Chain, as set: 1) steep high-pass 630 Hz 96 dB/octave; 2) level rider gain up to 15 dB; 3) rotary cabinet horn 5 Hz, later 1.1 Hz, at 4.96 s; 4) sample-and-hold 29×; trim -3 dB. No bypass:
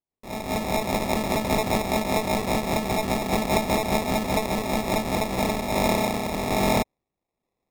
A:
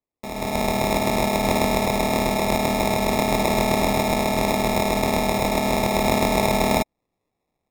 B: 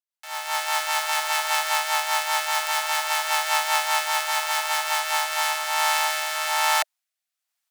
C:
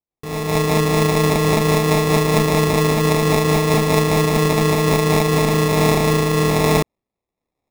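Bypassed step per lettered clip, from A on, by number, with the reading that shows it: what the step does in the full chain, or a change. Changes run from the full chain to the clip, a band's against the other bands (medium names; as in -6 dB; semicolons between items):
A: 3, loudness change +3.5 LU; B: 4, 500 Hz band -16.5 dB; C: 1, 125 Hz band +7.0 dB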